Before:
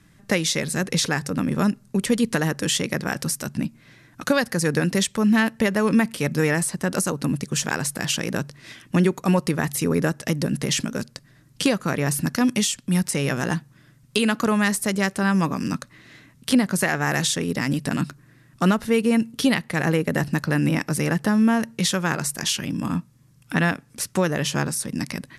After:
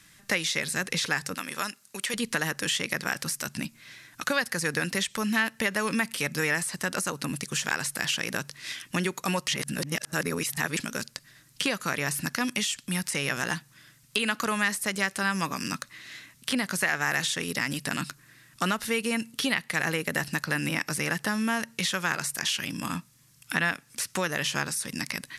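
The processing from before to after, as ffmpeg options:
ffmpeg -i in.wav -filter_complex "[0:a]asettb=1/sr,asplit=3[link_01][link_02][link_03];[link_01]atrim=end=1.344[link_04];[link_02]atrim=start=1.34:end=2.14,asetpts=PTS-STARTPTS,afade=type=in:duration=0.004:curve=qsin,afade=type=out:start_time=0.796:duration=0.004:curve=qsin,highpass=frequency=890:poles=1[link_05];[link_03]atrim=start=2.136[link_06];[link_04][link_05]acrossfade=duration=0.004:curve1=hsin:curve2=qsin[link_07];[link_07][link_06]acrossfade=duration=0.004:curve1=qsin:curve2=hsin,asplit=3[link_08][link_09][link_10];[link_08]atrim=end=9.482[link_11];[link_09]atrim=start=9.478:end=10.772,asetpts=PTS-STARTPTS,areverse[link_12];[link_10]atrim=start=10.768[link_13];[link_11][link_12]acrossfade=duration=0.004:curve1=hsin:curve2=hsin[link_14];[link_14][link_13]acrossfade=duration=0.004:curve1=hsin:curve2=hsin,acrossover=split=2700[link_15][link_16];[link_16]acompressor=threshold=-35dB:ratio=4:attack=1:release=60[link_17];[link_15][link_17]amix=inputs=2:normalize=0,tiltshelf=frequency=1100:gain=-9,acompressor=threshold=-29dB:ratio=1.5" out.wav

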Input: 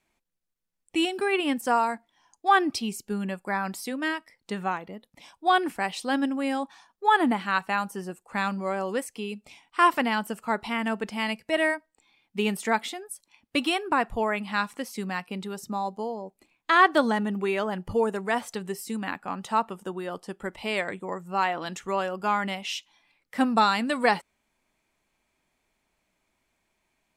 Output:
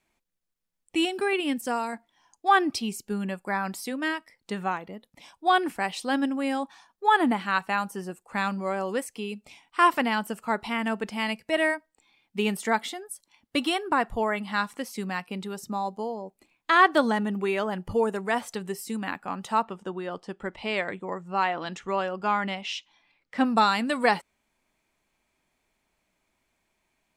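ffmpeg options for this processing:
ffmpeg -i in.wav -filter_complex "[0:a]asettb=1/sr,asplit=3[link_01][link_02][link_03];[link_01]atrim=end=1.334[link_04];[link_02]atrim=start=1.33:end=1.93,asetpts=PTS-STARTPTS,afade=type=in:duration=0.004:curve=qsin,afade=type=out:start_time=0.596:duration=0.004:curve=qsin,equalizer=frequency=1000:width=0.86:gain=-7.5[link_05];[link_03]atrim=start=1.926[link_06];[link_04][link_05]acrossfade=duration=0.004:curve1=hsin:curve2=qsin[link_07];[link_07][link_06]acrossfade=duration=0.004:curve1=qsin:curve2=hsin,asettb=1/sr,asplit=3[link_08][link_09][link_10];[link_08]atrim=end=12.584[link_11];[link_09]atrim=start=12.58:end=14.74,asetpts=PTS-STARTPTS,afade=type=in:duration=0.004:curve=qsin,afade=type=out:start_time=2.156:duration=0.004:curve=qsin,bandreject=frequency=2500:width=9.9[link_12];[link_10]atrim=start=14.736[link_13];[link_11][link_12]acrossfade=duration=0.004:curve1=hsin:curve2=qsin[link_14];[link_14][link_13]acrossfade=duration=0.004:curve1=qsin:curve2=hsin,asettb=1/sr,asplit=3[link_15][link_16][link_17];[link_15]atrim=end=19.634[link_18];[link_16]atrim=start=19.63:end=23.45,asetpts=PTS-STARTPTS,afade=type=in:duration=0.004:curve=qsin,afade=type=out:start_time=3.816:duration=0.004:curve=qsin,lowpass=5500[link_19];[link_17]atrim=start=23.446[link_20];[link_18][link_19]acrossfade=duration=0.004:curve1=hsin:curve2=qsin[link_21];[link_21][link_20]acrossfade=duration=0.004:curve1=qsin:curve2=hsin" out.wav

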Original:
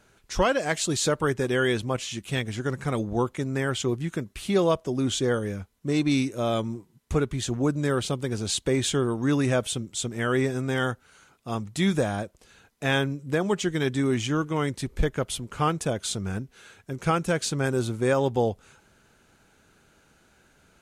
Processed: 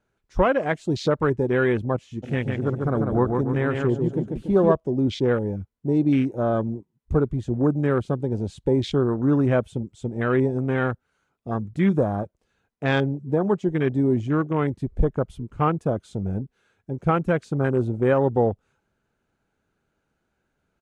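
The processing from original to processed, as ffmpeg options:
ffmpeg -i in.wav -filter_complex "[0:a]asplit=3[link_01][link_02][link_03];[link_01]afade=type=out:start_time=2.22:duration=0.02[link_04];[link_02]aecho=1:1:144|288|432|576|720|864:0.631|0.297|0.139|0.0655|0.0308|0.0145,afade=type=in:start_time=2.22:duration=0.02,afade=type=out:start_time=4.71:duration=0.02[link_05];[link_03]afade=type=in:start_time=4.71:duration=0.02[link_06];[link_04][link_05][link_06]amix=inputs=3:normalize=0,highshelf=frequency=8500:gain=-3.5,afwtdn=0.0251,highshelf=frequency=2200:gain=-9,volume=4dB" out.wav

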